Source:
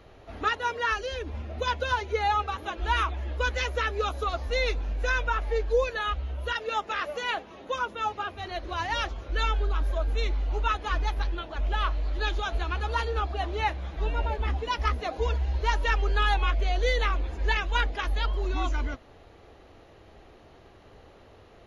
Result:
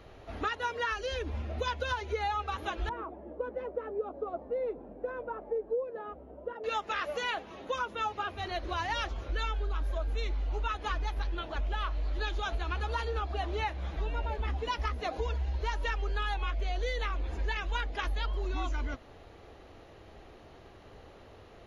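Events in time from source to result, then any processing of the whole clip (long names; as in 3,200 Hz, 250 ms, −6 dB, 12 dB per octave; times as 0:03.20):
0:02.89–0:06.64: flat-topped band-pass 360 Hz, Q 0.72
whole clip: downward compressor, threshold −29 dBFS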